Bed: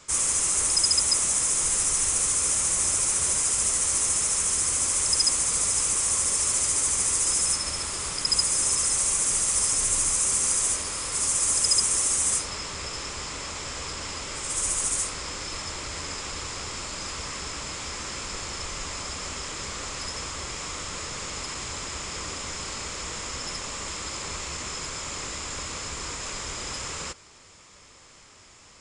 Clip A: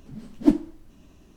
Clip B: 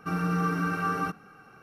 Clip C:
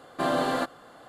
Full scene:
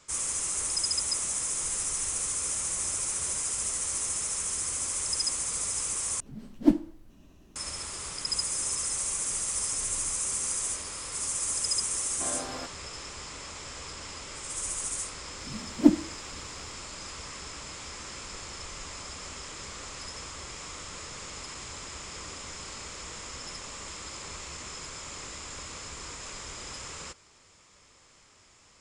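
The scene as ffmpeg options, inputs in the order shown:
-filter_complex "[1:a]asplit=2[s0][s1];[0:a]volume=0.447[s2];[s1]highpass=48[s3];[s2]asplit=2[s4][s5];[s4]atrim=end=6.204[s6];[s0]atrim=end=1.36,asetpts=PTS-STARTPTS,volume=0.708[s7];[s5]atrim=start=7.556[s8];[3:a]atrim=end=1.08,asetpts=PTS-STARTPTS,volume=0.237,afade=t=in:d=0.004:c=hsin,afade=t=out:st=1.076:d=0.004:c=hsin,adelay=12010[s9];[s3]atrim=end=1.36,asetpts=PTS-STARTPTS,volume=0.944,afade=t=in:d=0.004:c=hsin,afade=t=out:st=1.356:d=0.004:c=hsin,adelay=15380[s10];[s6][s7]acrossfade=d=0.004:c1=hsin:c2=hsin[s11];[s11][s8]acrossfade=d=0.004:c1=hsin:c2=hsin[s12];[s12][s9][s10]amix=inputs=3:normalize=0"

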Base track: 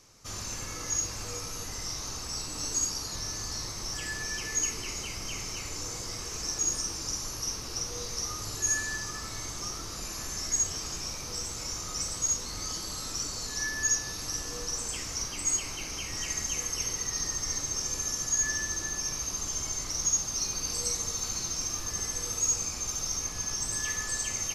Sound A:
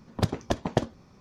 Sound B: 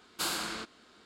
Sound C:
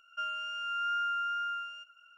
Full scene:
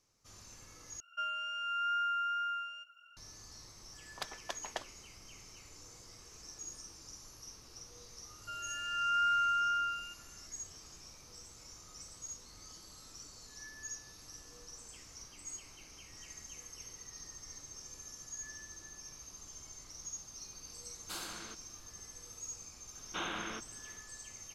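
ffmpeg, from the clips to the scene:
-filter_complex "[3:a]asplit=2[s0][s1];[2:a]asplit=2[s2][s3];[0:a]volume=0.133[s4];[1:a]highpass=1100[s5];[s1]dynaudnorm=f=120:g=9:m=3.76[s6];[s3]aresample=8000,aresample=44100[s7];[s4]asplit=2[s8][s9];[s8]atrim=end=1.004[s10];[s0]atrim=end=2.17,asetpts=PTS-STARTPTS,volume=0.841[s11];[s9]atrim=start=3.166[s12];[s5]atrim=end=1.2,asetpts=PTS-STARTPTS,volume=0.531,afade=t=in:d=0.004:c=hsin,afade=t=out:st=1.196:d=0.004:c=hsin,adelay=3990[s13];[s6]atrim=end=2.17,asetpts=PTS-STARTPTS,volume=0.335,afade=t=in:d=0.004:c=hsin,afade=t=out:st=2.166:d=0.004:c=hsin,adelay=8300[s14];[s2]atrim=end=1.05,asetpts=PTS-STARTPTS,volume=0.299,afade=t=in:d=0.004:c=hsin,afade=t=out:st=1.046:d=0.004:c=hsin,adelay=20900[s15];[s7]atrim=end=1.05,asetpts=PTS-STARTPTS,volume=0.75,afade=t=in:d=0.004:c=hsin,afade=t=out:st=1.046:d=0.004:c=hsin,adelay=22950[s16];[s10][s11]acrossfade=d=0.004:c1=hsin:c2=hsin[s17];[s17][s12]acrossfade=d=0.004:c1=hsin:c2=hsin[s18];[s18][s13][s14][s15][s16]amix=inputs=5:normalize=0"

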